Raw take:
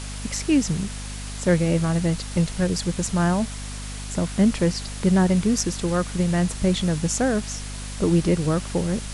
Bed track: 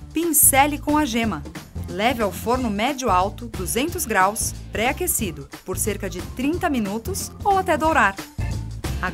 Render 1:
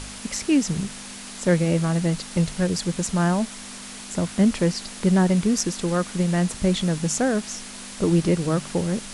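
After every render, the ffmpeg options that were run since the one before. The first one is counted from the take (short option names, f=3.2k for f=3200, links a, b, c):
-af "bandreject=f=50:t=h:w=4,bandreject=f=100:t=h:w=4,bandreject=f=150:t=h:w=4"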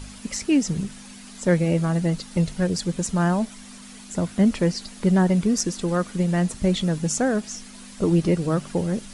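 -af "afftdn=nr=9:nf=-38"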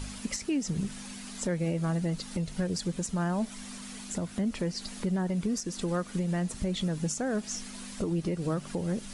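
-af "acompressor=threshold=-24dB:ratio=2.5,alimiter=limit=-21.5dB:level=0:latency=1:release=302"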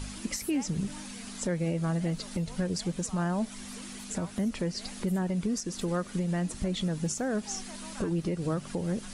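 -filter_complex "[1:a]volume=-30.5dB[a];[0:a][a]amix=inputs=2:normalize=0"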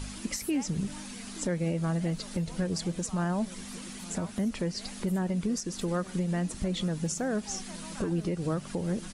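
-filter_complex "[0:a]asplit=2[a][b];[b]adelay=874.6,volume=-18dB,highshelf=f=4k:g=-19.7[c];[a][c]amix=inputs=2:normalize=0"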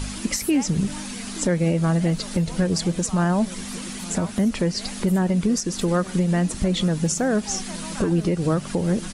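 -af "volume=9dB"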